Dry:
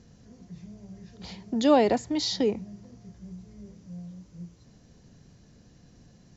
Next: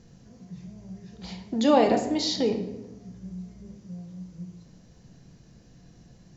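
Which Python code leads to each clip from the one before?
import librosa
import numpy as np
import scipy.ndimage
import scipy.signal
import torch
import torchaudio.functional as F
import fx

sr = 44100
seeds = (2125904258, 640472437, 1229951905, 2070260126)

y = fx.room_shoebox(x, sr, seeds[0], volume_m3=340.0, walls='mixed', distance_m=0.69)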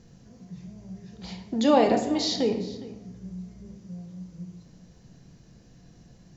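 y = x + 10.0 ** (-18.5 / 20.0) * np.pad(x, (int(411 * sr / 1000.0), 0))[:len(x)]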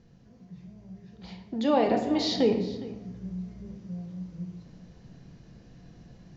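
y = scipy.signal.sosfilt(scipy.signal.butter(2, 4100.0, 'lowpass', fs=sr, output='sos'), x)
y = fx.rider(y, sr, range_db=10, speed_s=0.5)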